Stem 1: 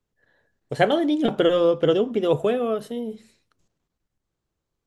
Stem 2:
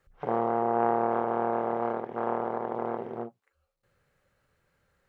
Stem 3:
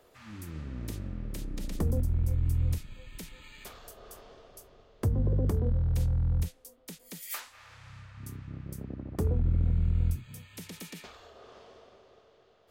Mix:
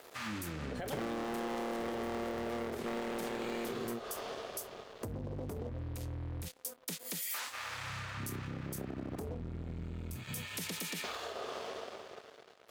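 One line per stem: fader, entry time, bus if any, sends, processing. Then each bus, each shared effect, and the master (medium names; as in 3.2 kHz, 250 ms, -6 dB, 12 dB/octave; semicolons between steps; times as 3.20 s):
-8.0 dB, 0.00 s, bus A, no send, none
0.0 dB, 0.70 s, no bus, no send, peaking EQ 840 Hz -12 dB 2.3 oct; waveshaping leveller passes 5; tilt EQ +1.5 dB/octave
+2.5 dB, 0.00 s, bus A, no send, compression, threshold -34 dBFS, peak gain reduction 11.5 dB; waveshaping leveller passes 3
bus A: 0.0 dB, high-pass 320 Hz 6 dB/octave; peak limiter -27.5 dBFS, peak gain reduction 13.5 dB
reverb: none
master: compression 6:1, threshold -36 dBFS, peak gain reduction 12.5 dB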